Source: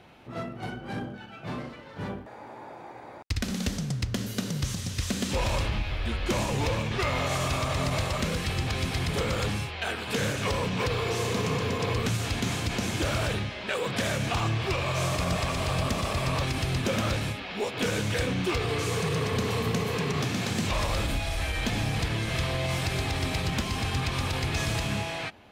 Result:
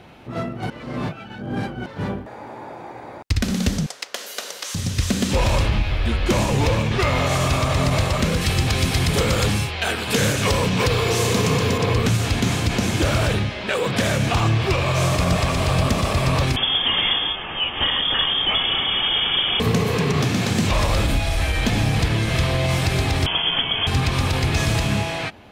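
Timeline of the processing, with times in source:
0.7–1.86 reverse
3.86–4.75 HPF 540 Hz 24 dB/oct
8.41–11.78 high shelf 4300 Hz +7 dB
16.56–19.6 inverted band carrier 3400 Hz
23.26–23.87 inverted band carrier 3300 Hz
whole clip: low shelf 460 Hz +3 dB; gain +6.5 dB

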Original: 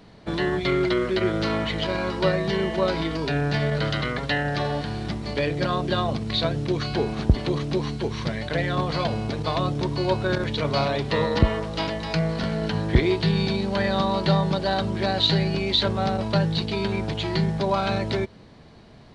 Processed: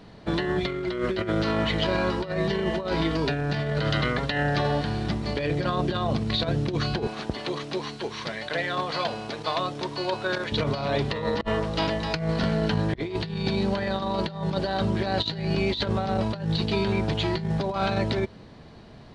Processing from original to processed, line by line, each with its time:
7.07–10.52 HPF 710 Hz 6 dB/oct
whole clip: high shelf 7000 Hz -5 dB; notch 2200 Hz, Q 30; negative-ratio compressor -25 dBFS, ratio -0.5

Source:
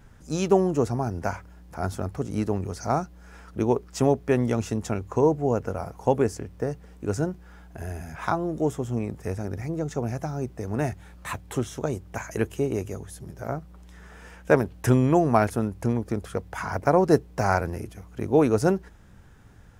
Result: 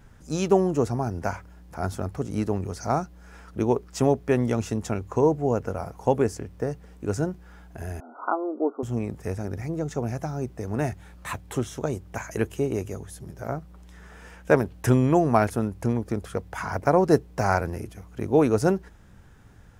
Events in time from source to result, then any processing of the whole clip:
8–8.83 brick-wall FIR band-pass 230–1500 Hz

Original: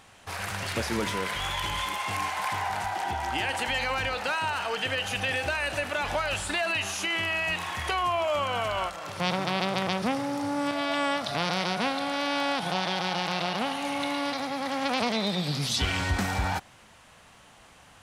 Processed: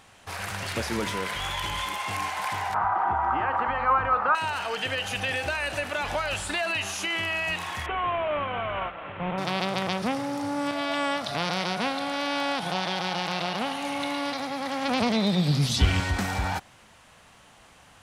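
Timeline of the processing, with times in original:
2.74–4.35 synth low-pass 1200 Hz, resonance Q 6.9
7.86–9.38 CVSD 16 kbps
14.88–16 low shelf 260 Hz +10.5 dB

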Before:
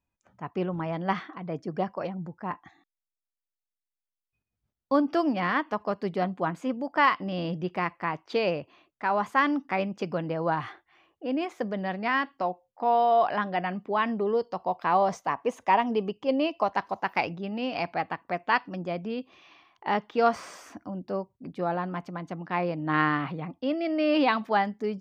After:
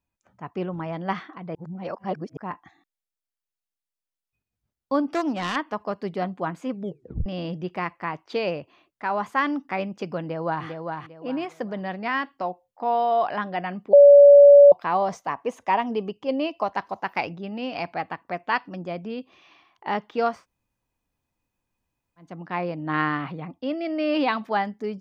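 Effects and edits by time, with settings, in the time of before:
1.55–2.37 reverse
5.04–5.56 self-modulated delay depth 0.16 ms
6.7 tape stop 0.56 s
10.2–10.66 echo throw 0.4 s, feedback 30%, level -5 dB
13.93–14.72 bleep 571 Hz -6.5 dBFS
20.34–22.28 room tone, crossfade 0.24 s

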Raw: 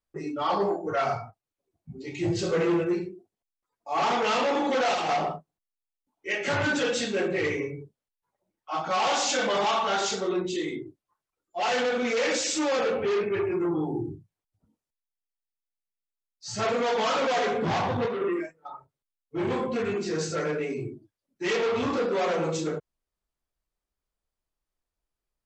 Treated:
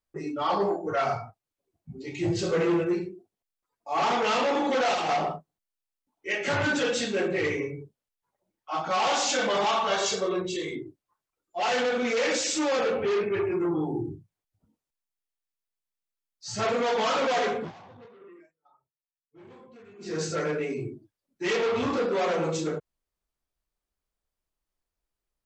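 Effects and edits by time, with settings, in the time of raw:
9.9–10.75 comb 1.8 ms
17.41–20.29 dip -22.5 dB, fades 0.31 s equal-power

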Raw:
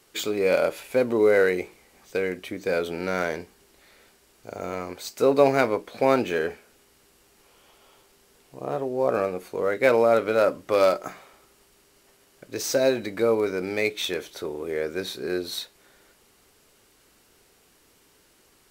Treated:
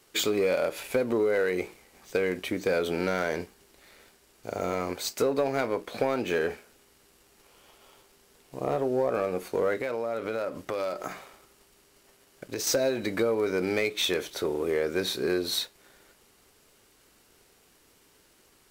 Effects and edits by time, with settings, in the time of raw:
9.76–12.67 compressor, threshold -32 dBFS
whole clip: compressor 10:1, threshold -25 dBFS; sample leveller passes 1

